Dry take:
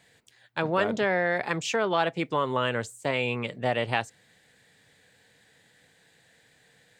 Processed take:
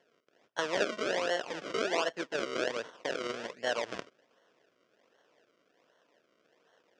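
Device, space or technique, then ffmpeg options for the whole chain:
circuit-bent sampling toy: -af "acrusher=samples=35:mix=1:aa=0.000001:lfo=1:lforange=35:lforate=1.3,highpass=540,equalizer=f=810:t=q:w=4:g=-10,equalizer=f=1.2k:t=q:w=4:g=-4,equalizer=f=2.2k:t=q:w=4:g=-4,equalizer=f=4.1k:t=q:w=4:g=-8,lowpass=f=5.6k:w=0.5412,lowpass=f=5.6k:w=1.3066"

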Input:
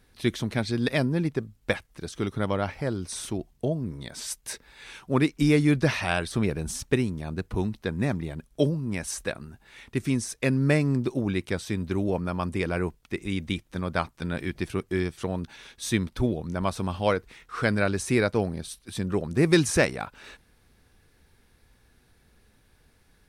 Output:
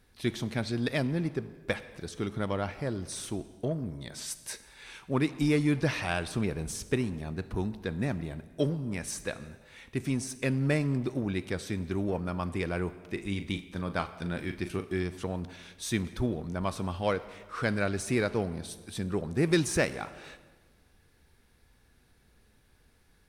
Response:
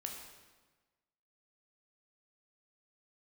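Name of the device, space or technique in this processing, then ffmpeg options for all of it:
saturated reverb return: -filter_complex "[0:a]asplit=2[a][b];[1:a]atrim=start_sample=2205[c];[b][c]afir=irnorm=-1:irlink=0,asoftclip=type=tanh:threshold=-30dB,volume=-4dB[d];[a][d]amix=inputs=2:normalize=0,asettb=1/sr,asplit=3[e][f][g];[e]atrim=end=13.034[h];[f]atrim=start=13.03:end=14.95,asetpts=PTS-STARTPTS,afade=t=in:d=0.004:c=qsin,afade=t=out:st=1.916:d=0.004:c=qsin,asplit=2[i][j];[j]adelay=40,volume=-10dB[k];[i][k]amix=inputs=2:normalize=0,atrim=end_sample=84672[l];[g]atrim=start=14.946[m];[h][l]acrossfade=d=0.004:c1=hsin:c2=qsin[n];[n][m]acrossfade=d=0.004:c1=qsin:c2=hsin,volume=-6dB"

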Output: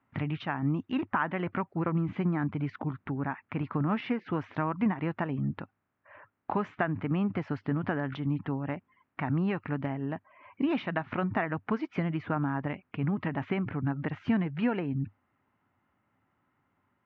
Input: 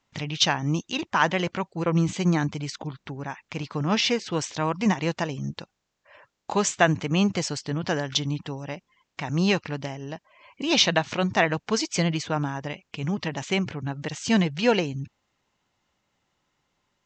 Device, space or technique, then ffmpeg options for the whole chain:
bass amplifier: -af "acompressor=threshold=-27dB:ratio=4,highpass=69,equalizer=f=100:t=q:w=4:g=8,equalizer=f=260:t=q:w=4:g=7,equalizer=f=500:t=q:w=4:g=-5,equalizer=f=1.3k:t=q:w=4:g=4,lowpass=f=2.1k:w=0.5412,lowpass=f=2.1k:w=1.3066"

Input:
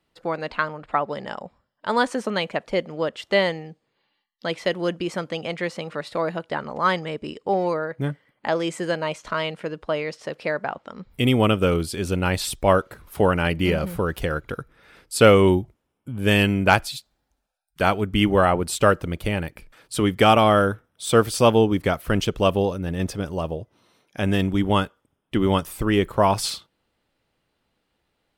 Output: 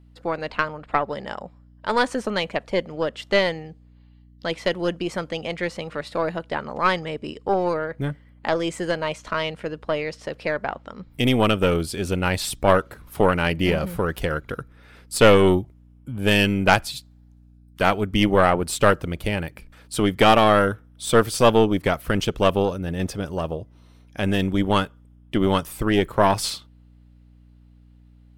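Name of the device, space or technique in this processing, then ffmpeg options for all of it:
valve amplifier with mains hum: -af "aeval=exprs='(tanh(2.51*val(0)+0.65)-tanh(0.65))/2.51':c=same,aeval=exprs='val(0)+0.00224*(sin(2*PI*60*n/s)+sin(2*PI*2*60*n/s)/2+sin(2*PI*3*60*n/s)/3+sin(2*PI*4*60*n/s)/4+sin(2*PI*5*60*n/s)/5)':c=same,volume=3.5dB"

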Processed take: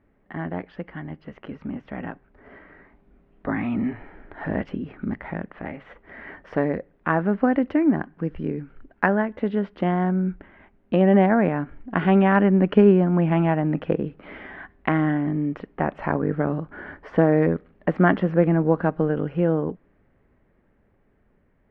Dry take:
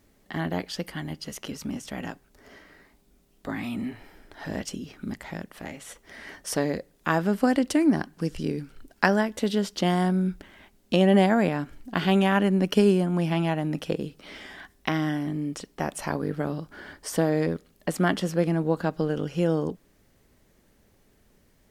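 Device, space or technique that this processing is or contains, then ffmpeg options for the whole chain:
action camera in a waterproof case: -af "lowpass=f=2.1k:w=0.5412,lowpass=f=2.1k:w=1.3066,dynaudnorm=f=170:g=31:m=9dB,volume=-1dB" -ar 48000 -c:a aac -b:a 128k

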